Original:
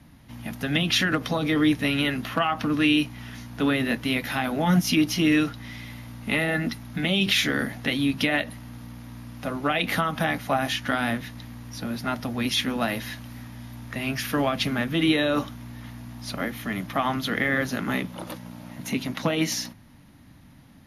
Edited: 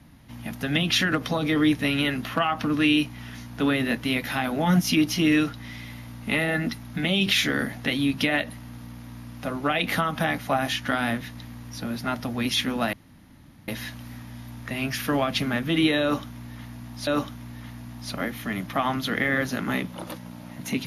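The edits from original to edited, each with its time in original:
12.93 insert room tone 0.75 s
15.27–16.32 loop, 2 plays

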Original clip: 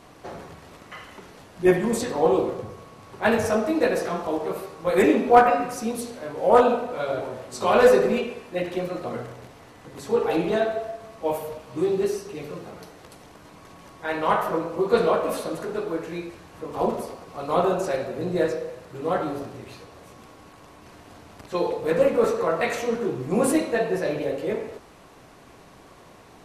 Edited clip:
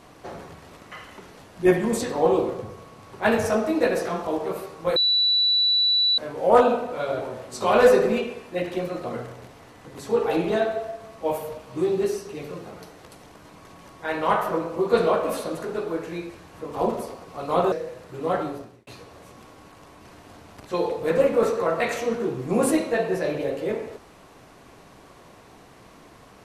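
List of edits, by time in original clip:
4.96–6.18 bleep 3950 Hz -17 dBFS
17.72–18.53 cut
19.21–19.68 fade out

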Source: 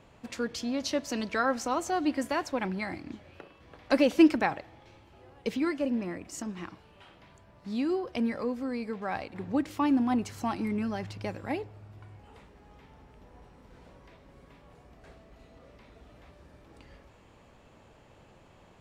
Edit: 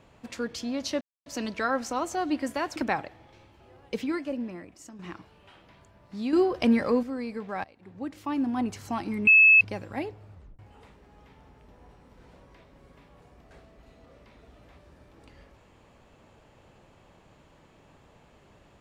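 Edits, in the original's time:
1.01 insert silence 0.25 s
2.51–4.29 cut
5.49–6.52 fade out, to -11.5 dB
7.86–8.56 gain +7.5 dB
9.17–10.28 fade in, from -19.5 dB
10.8–11.14 bleep 2600 Hz -12.5 dBFS
11.86 tape stop 0.26 s

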